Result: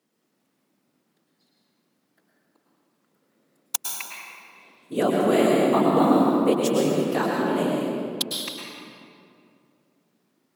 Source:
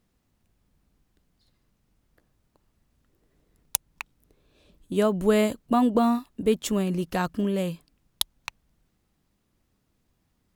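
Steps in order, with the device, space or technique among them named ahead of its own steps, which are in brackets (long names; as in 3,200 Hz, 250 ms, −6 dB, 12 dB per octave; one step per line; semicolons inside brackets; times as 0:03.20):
whispering ghost (random phases in short frames; high-pass filter 210 Hz 24 dB per octave; convolution reverb RT60 2.5 s, pre-delay 99 ms, DRR −2.5 dB)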